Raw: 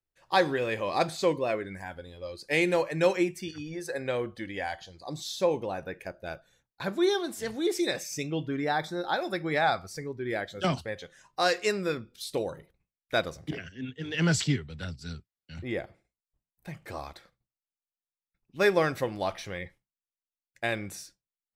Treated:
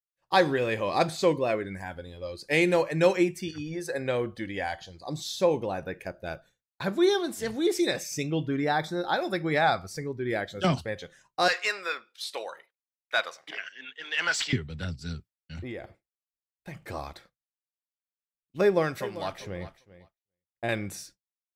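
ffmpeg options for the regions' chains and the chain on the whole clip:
ffmpeg -i in.wav -filter_complex "[0:a]asettb=1/sr,asplit=3[link_01][link_02][link_03];[link_01]atrim=end=11.484[link_04];[link_02]atrim=start=11.48:end=14.53,asetpts=PTS-STARTPTS,afade=type=in:duration=0.004:curve=qsin,afade=type=out:start_time=3.046:duration=0.004:curve=qsin,highpass=950,asplit=2[link_05][link_06];[link_06]highpass=frequency=720:poles=1,volume=12dB,asoftclip=type=tanh:threshold=-13dB[link_07];[link_05][link_07]amix=inputs=2:normalize=0,lowpass=frequency=2500:poles=1,volume=-6dB[link_08];[link_03]atrim=start=14.526[link_09];[link_04][link_08]acrossfade=duration=0.004:curve1=hsin:curve2=qsin[link_10];[link_10][link_09]acrossfade=duration=0.004:curve1=qsin:curve2=hsin,asettb=1/sr,asplit=3[link_11][link_12][link_13];[link_11]atrim=end=15.564[link_14];[link_12]atrim=start=15.56:end=16.76,asetpts=PTS-STARTPTS,afade=type=in:duration=0.004:curve=qsin,afade=type=out:start_time=1.196:duration=0.004:curve=qsin,equalizer=frequency=160:width=2.9:gain=-7.5,acompressor=threshold=-36dB:ratio=6:attack=3.2:release=140:knee=1:detection=peak[link_15];[link_13]atrim=start=16.756[link_16];[link_14][link_15]acrossfade=duration=0.004:curve1=hsin:curve2=qsin[link_17];[link_17][link_16]acrossfade=duration=0.004:curve1=qsin:curve2=hsin,asettb=1/sr,asplit=3[link_18][link_19][link_20];[link_18]atrim=end=18.614[link_21];[link_19]atrim=start=18.61:end=20.69,asetpts=PTS-STARTPTS,afade=type=in:duration=0.004:curve=qsin,afade=type=out:start_time=2.076:duration=0.004:curve=qsin,acrossover=split=940[link_22][link_23];[link_22]aeval=exprs='val(0)*(1-0.7/2+0.7/2*cos(2*PI*1*n/s))':channel_layout=same[link_24];[link_23]aeval=exprs='val(0)*(1-0.7/2-0.7/2*cos(2*PI*1*n/s))':channel_layout=same[link_25];[link_24][link_25]amix=inputs=2:normalize=0,aecho=1:1:394|788:0.178|0.0391,atrim=end_sample=91728[link_26];[link_20]atrim=start=20.686[link_27];[link_21][link_26]acrossfade=duration=0.004:curve1=hsin:curve2=qsin[link_28];[link_28][link_27]acrossfade=duration=0.004:curve1=qsin:curve2=hsin,agate=range=-33dB:threshold=-50dB:ratio=3:detection=peak,equalizer=frequency=130:width_type=o:width=2.7:gain=2.5,volume=1.5dB" out.wav

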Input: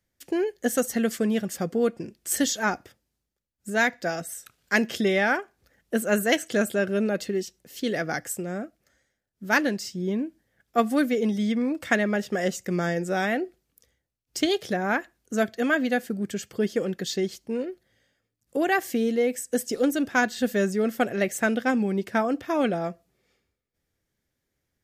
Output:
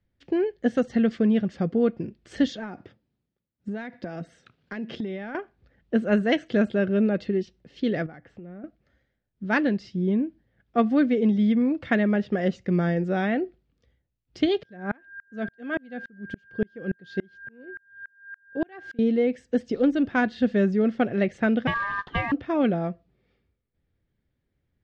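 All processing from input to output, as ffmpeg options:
ffmpeg -i in.wav -filter_complex "[0:a]asettb=1/sr,asplit=3[link_01][link_02][link_03];[link_01]atrim=end=2.554[link_04];[link_02]atrim=start=2.55:end=5.35,asetpts=PTS-STARTPTS,afade=type=in:duration=0.004:curve=qsin,afade=type=out:start_time=2.796:duration=0.004:curve=qsin,highpass=140,lowshelf=frequency=460:gain=5,acompressor=threshold=-30dB:ratio=20:attack=3.2:release=140:knee=1:detection=peak[link_05];[link_03]atrim=start=5.346[link_06];[link_04][link_05]acrossfade=duration=0.004:curve1=hsin:curve2=qsin[link_07];[link_07][link_06]acrossfade=duration=0.004:curve1=qsin:curve2=hsin,asettb=1/sr,asplit=3[link_08][link_09][link_10];[link_08]atrim=end=8.064[link_11];[link_09]atrim=start=8.06:end=8.64,asetpts=PTS-STARTPTS,afade=type=in:duration=0.004:curve=qsin,afade=type=out:start_time=0.576:duration=0.004:curve=qsin,lowpass=2800,bandreject=frequency=1600:width=27,acompressor=threshold=-46dB:ratio=3:attack=3.2:release=140:knee=1:detection=peak[link_12];[link_10]atrim=start=8.636[link_13];[link_11][link_12]acrossfade=duration=0.004:curve1=hsin:curve2=qsin[link_14];[link_14][link_13]acrossfade=duration=0.004:curve1=qsin:curve2=hsin,asettb=1/sr,asplit=3[link_15][link_16][link_17];[link_15]atrim=end=14.634[link_18];[link_16]atrim=start=14.63:end=18.99,asetpts=PTS-STARTPTS,afade=type=in:duration=0.004:curve=qsin,afade=type=out:start_time=4.356:duration=0.004:curve=qsin,aeval=exprs='val(0)+0.0316*sin(2*PI*1600*n/s)':channel_layout=same,aeval=exprs='val(0)*pow(10,-35*if(lt(mod(-3.5*n/s,1),2*abs(-3.5)/1000),1-mod(-3.5*n/s,1)/(2*abs(-3.5)/1000),(mod(-3.5*n/s,1)-2*abs(-3.5)/1000)/(1-2*abs(-3.5)/1000))/20)':channel_layout=same[link_19];[link_17]atrim=start=18.986[link_20];[link_18][link_19]acrossfade=duration=0.004:curve1=hsin:curve2=qsin[link_21];[link_21][link_20]acrossfade=duration=0.004:curve1=qsin:curve2=hsin,asettb=1/sr,asplit=3[link_22][link_23][link_24];[link_22]atrim=end=21.674[link_25];[link_23]atrim=start=21.67:end=22.32,asetpts=PTS-STARTPTS,afade=type=in:duration=0.004:curve=qsin,afade=type=out:start_time=0.646:duration=0.004:curve=qsin,lowshelf=frequency=130:gain=7.5,acrusher=bits=4:mode=log:mix=0:aa=0.000001,aeval=exprs='val(0)*sin(2*PI*1400*n/s)':channel_layout=same[link_26];[link_24]atrim=start=22.316[link_27];[link_25][link_26]acrossfade=duration=0.004:curve1=hsin:curve2=qsin[link_28];[link_28][link_27]acrossfade=duration=0.004:curve1=qsin:curve2=hsin,lowpass=frequency=4000:width=0.5412,lowpass=frequency=4000:width=1.3066,lowshelf=frequency=320:gain=11.5,volume=-3.5dB" out.wav

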